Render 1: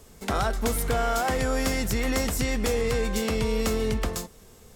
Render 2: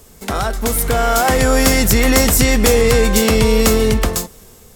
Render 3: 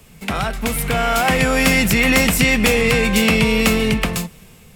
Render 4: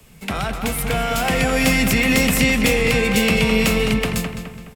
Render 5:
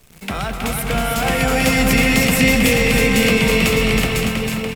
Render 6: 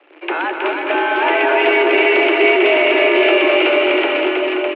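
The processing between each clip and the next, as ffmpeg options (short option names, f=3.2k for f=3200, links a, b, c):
-af "highshelf=f=9.2k:g=8,dynaudnorm=f=310:g=7:m=7.5dB,volume=5.5dB"
-filter_complex "[0:a]equalizer=f=160:t=o:w=0.67:g=11,equalizer=f=400:t=o:w=0.67:g=-4,equalizer=f=2.5k:t=o:w=0.67:g=11,equalizer=f=6.3k:t=o:w=0.67:g=-4,equalizer=f=16k:t=o:w=0.67:g=-5,acrossover=split=160|1400[a][b][c];[a]asoftclip=type=tanh:threshold=-19dB[d];[d][b][c]amix=inputs=3:normalize=0,volume=-3dB"
-filter_complex "[0:a]asplit=2[a][b];[b]adelay=210,lowpass=f=3.5k:p=1,volume=-7dB,asplit=2[c][d];[d]adelay=210,lowpass=f=3.5k:p=1,volume=0.45,asplit=2[e][f];[f]adelay=210,lowpass=f=3.5k:p=1,volume=0.45,asplit=2[g][h];[h]adelay=210,lowpass=f=3.5k:p=1,volume=0.45,asplit=2[i][j];[j]adelay=210,lowpass=f=3.5k:p=1,volume=0.45[k];[a][c][e][g][i][k]amix=inputs=6:normalize=0,acrossover=split=200|690|1900[l][m][n][o];[n]alimiter=limit=-20dB:level=0:latency=1[p];[l][m][p][o]amix=inputs=4:normalize=0,volume=-2dB"
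-af "aecho=1:1:320|608|867.2|1100|1310:0.631|0.398|0.251|0.158|0.1,acrusher=bits=8:dc=4:mix=0:aa=0.000001"
-af "asoftclip=type=tanh:threshold=-11.5dB,highpass=f=180:t=q:w=0.5412,highpass=f=180:t=q:w=1.307,lowpass=f=2.7k:t=q:w=0.5176,lowpass=f=2.7k:t=q:w=0.7071,lowpass=f=2.7k:t=q:w=1.932,afreqshift=150,volume=6dB"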